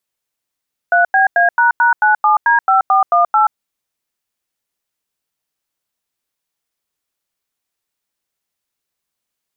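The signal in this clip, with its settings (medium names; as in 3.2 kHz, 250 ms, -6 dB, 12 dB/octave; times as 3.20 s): DTMF "3BA##97D5418", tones 129 ms, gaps 91 ms, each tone -11 dBFS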